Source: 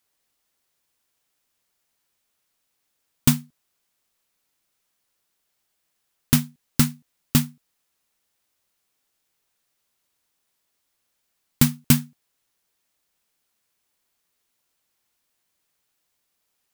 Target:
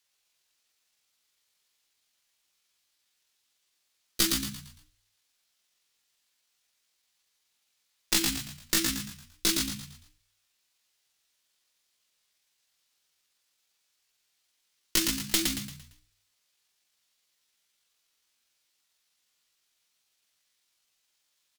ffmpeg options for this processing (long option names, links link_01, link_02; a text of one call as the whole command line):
ffmpeg -i in.wav -filter_complex "[0:a]equalizer=frequency=3100:width_type=o:width=2.7:gain=12,bandreject=frequency=50:width_type=h:width=6,bandreject=frequency=100:width_type=h:width=6,bandreject=frequency=150:width_type=h:width=6,bandreject=frequency=200:width_type=h:width=6,bandreject=frequency=250:width_type=h:width=6,acrossover=split=290|5000[link_01][link_02][link_03];[link_01]alimiter=limit=-19dB:level=0:latency=1:release=265[link_04];[link_04][link_02][link_03]amix=inputs=3:normalize=0,asetrate=59976,aresample=44100,aeval=exprs='clip(val(0),-1,0.158)':channel_layout=same,aeval=exprs='0.562*(cos(1*acos(clip(val(0)/0.562,-1,1)))-cos(1*PI/2))+0.0141*(cos(4*acos(clip(val(0)/0.562,-1,1)))-cos(4*PI/2))':channel_layout=same,atempo=0.57,asplit=2[link_05][link_06];[link_06]asplit=5[link_07][link_08][link_09][link_10][link_11];[link_07]adelay=114,afreqshift=-61,volume=-4dB[link_12];[link_08]adelay=228,afreqshift=-122,volume=-12.4dB[link_13];[link_09]adelay=342,afreqshift=-183,volume=-20.8dB[link_14];[link_10]adelay=456,afreqshift=-244,volume=-29.2dB[link_15];[link_11]adelay=570,afreqshift=-305,volume=-37.6dB[link_16];[link_12][link_13][link_14][link_15][link_16]amix=inputs=5:normalize=0[link_17];[link_05][link_17]amix=inputs=2:normalize=0,volume=-7dB" out.wav